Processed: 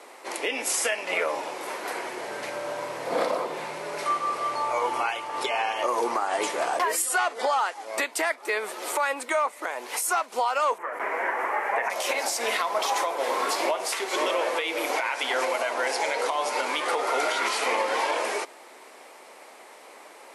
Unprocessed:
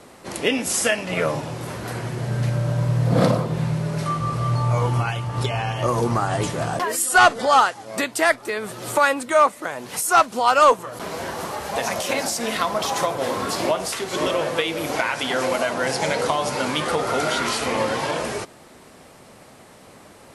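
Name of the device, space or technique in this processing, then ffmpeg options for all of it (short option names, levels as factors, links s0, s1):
laptop speaker: -filter_complex "[0:a]asettb=1/sr,asplit=3[s0][s1][s2];[s0]atrim=end=10.784[s3];[s1]atrim=start=10.78:end=11.9,asetpts=PTS-STARTPTS,afade=t=in:d=0.004:c=qsin,afade=t=out:st=1.116:d=0.004:c=qsin,highshelf=f=2800:t=q:w=3:g=-13[s4];[s2]atrim=start=11.896[s5];[s3][s4]acrossfade=d=0.004:c1=hsin:c2=qsin[s6];[s6][s5]acrossfade=d=0.004:c1=qsin:c2=hsin,highpass=f=350:w=0.5412,highpass=f=350:w=1.3066,equalizer=f=910:t=o:w=0.52:g=5,equalizer=f=2200:t=o:w=0.46:g=6,alimiter=limit=0.2:level=0:latency=1:release=197,volume=0.841"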